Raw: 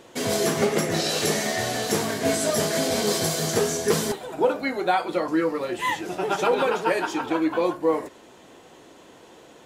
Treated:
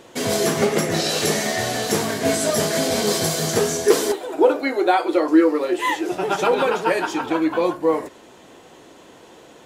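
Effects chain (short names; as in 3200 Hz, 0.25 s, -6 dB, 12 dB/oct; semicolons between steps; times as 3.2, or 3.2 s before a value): 3.85–6.12 resonant low shelf 240 Hz -9.5 dB, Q 3; gain +3 dB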